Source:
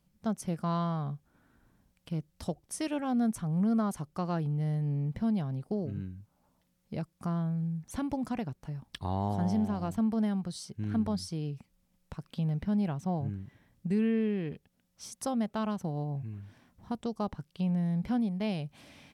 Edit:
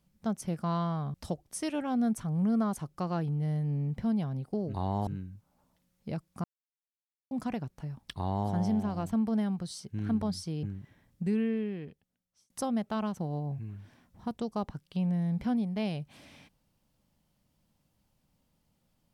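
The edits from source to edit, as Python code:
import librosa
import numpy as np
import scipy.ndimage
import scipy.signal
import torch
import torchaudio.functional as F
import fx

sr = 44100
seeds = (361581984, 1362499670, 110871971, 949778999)

y = fx.edit(x, sr, fx.cut(start_s=1.14, length_s=1.18),
    fx.silence(start_s=7.29, length_s=0.87),
    fx.duplicate(start_s=9.02, length_s=0.33, to_s=5.92),
    fx.cut(start_s=11.48, length_s=1.79),
    fx.fade_out_span(start_s=13.86, length_s=1.28), tone=tone)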